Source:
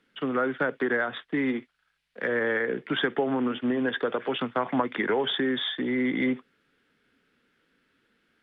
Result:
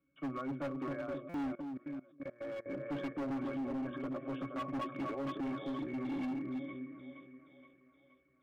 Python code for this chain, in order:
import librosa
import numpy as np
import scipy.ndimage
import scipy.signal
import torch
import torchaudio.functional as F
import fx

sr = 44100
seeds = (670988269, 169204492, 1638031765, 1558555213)

p1 = fx.octave_resonator(x, sr, note='C#', decay_s=0.12)
p2 = p1 + fx.echo_split(p1, sr, split_hz=520.0, low_ms=262, high_ms=472, feedback_pct=52, wet_db=-4.5, dry=0)
p3 = np.clip(p2, -10.0 ** (-35.5 / 20.0), 10.0 ** (-35.5 / 20.0))
p4 = fx.level_steps(p3, sr, step_db=21, at=(1.55, 2.66))
p5 = fx.buffer_glitch(p4, sr, at_s=(1.29,), block=256, repeats=8)
y = p5 * 10.0 ** (1.0 / 20.0)